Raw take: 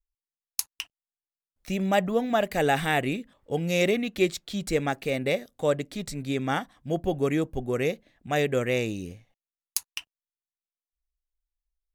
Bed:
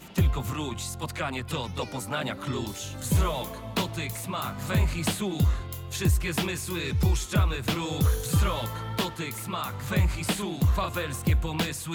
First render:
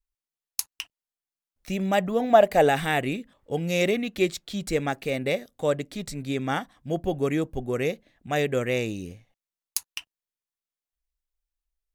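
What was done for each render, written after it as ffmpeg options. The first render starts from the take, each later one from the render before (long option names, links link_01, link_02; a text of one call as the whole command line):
ffmpeg -i in.wav -filter_complex "[0:a]asettb=1/sr,asplit=3[link_01][link_02][link_03];[link_01]atrim=end=2.204[link_04];[link_02]atrim=start=2.2:end=2.69,asetpts=PTS-STARTPTS,afade=type=in:duration=0.004:curve=qsin,afade=type=out:start_time=0.486:duration=0.004:curve=qsin,equalizer=frequency=660:width_type=o:width=1.2:gain=9.5[link_05];[link_03]atrim=start=2.686[link_06];[link_04][link_05]acrossfade=duration=0.004:curve1=hsin:curve2=qsin[link_07];[link_07][link_06]acrossfade=duration=0.004:curve1=qsin:curve2=hsin" out.wav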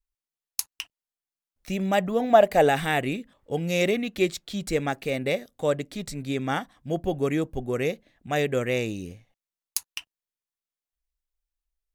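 ffmpeg -i in.wav -af anull out.wav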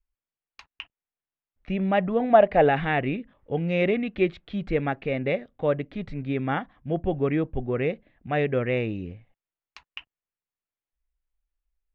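ffmpeg -i in.wav -af "lowpass=frequency=2800:width=0.5412,lowpass=frequency=2800:width=1.3066,lowshelf=frequency=130:gain=5.5" out.wav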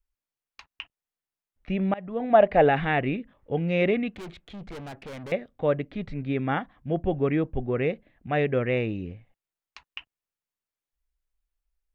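ffmpeg -i in.wav -filter_complex "[0:a]asettb=1/sr,asplit=3[link_01][link_02][link_03];[link_01]atrim=end=4.164[link_04];[link_02]atrim=start=4.16:end=5.32,asetpts=PTS-STARTPTS,afade=type=in:duration=0.004:curve=qsin,afade=type=out:start_time=1.156:duration=0.004:curve=qsin,aeval=exprs='(tanh(70.8*val(0)+0.3)-tanh(0.3))/70.8':channel_layout=same[link_05];[link_03]atrim=start=5.316[link_06];[link_04][link_05]acrossfade=duration=0.004:curve1=hsin:curve2=qsin[link_07];[link_07][link_06]acrossfade=duration=0.004:curve1=qsin:curve2=hsin,asplit=2[link_08][link_09];[link_08]atrim=end=1.94,asetpts=PTS-STARTPTS,afade=type=out:start_time=1.936:duration=0.004:curve=hsin:silence=0.0707946[link_10];[link_09]atrim=start=1.94,asetpts=PTS-STARTPTS,afade=type=in:duration=0.5:silence=0.0707946[link_11];[link_10][link_11]concat=n=2:v=0:a=1" out.wav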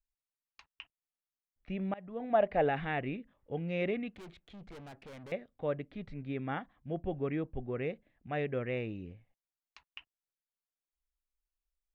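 ffmpeg -i in.wav -af "volume=-10dB" out.wav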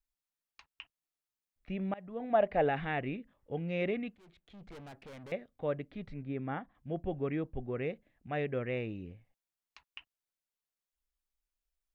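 ffmpeg -i in.wav -filter_complex "[0:a]asettb=1/sr,asplit=3[link_01][link_02][link_03];[link_01]atrim=end=6.244[link_04];[link_02]atrim=start=6.24:end=6.75,asetpts=PTS-STARTPTS,afade=type=in:duration=0.004:curve=qsin,afade=type=out:start_time=0.506:duration=0.004:curve=qsin,lowpass=frequency=1600:poles=1[link_05];[link_03]atrim=start=6.746[link_06];[link_04][link_05]acrossfade=duration=0.004:curve1=hsin:curve2=qsin[link_07];[link_07][link_06]acrossfade=duration=0.004:curve1=qsin:curve2=hsin,asplit=2[link_08][link_09];[link_08]atrim=end=4.16,asetpts=PTS-STARTPTS,afade=type=out:start_time=4.156:duration=0.004:curve=hsin:silence=0.149624[link_10];[link_09]atrim=start=4.16,asetpts=PTS-STARTPTS,afade=type=in:duration=0.57:silence=0.149624[link_11];[link_10][link_11]concat=n=2:v=0:a=1" out.wav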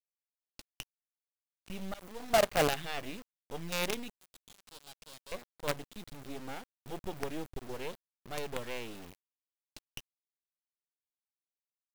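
ffmpeg -i in.wav -af "aexciter=amount=6.8:drive=2.8:freq=3100,acrusher=bits=5:dc=4:mix=0:aa=0.000001" out.wav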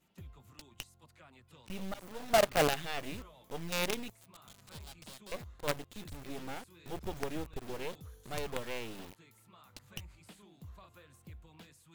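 ffmpeg -i in.wav -i bed.wav -filter_complex "[1:a]volume=-27.5dB[link_01];[0:a][link_01]amix=inputs=2:normalize=0" out.wav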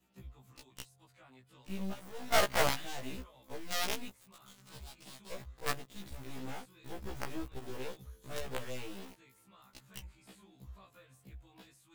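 ffmpeg -i in.wav -af "aeval=exprs='0.158*(cos(1*acos(clip(val(0)/0.158,-1,1)))-cos(1*PI/2))+0.0501*(cos(4*acos(clip(val(0)/0.158,-1,1)))-cos(4*PI/2))+0.0126*(cos(5*acos(clip(val(0)/0.158,-1,1)))-cos(5*PI/2))+0.0562*(cos(7*acos(clip(val(0)/0.158,-1,1)))-cos(7*PI/2))':channel_layout=same,afftfilt=real='re*1.73*eq(mod(b,3),0)':imag='im*1.73*eq(mod(b,3),0)':win_size=2048:overlap=0.75" out.wav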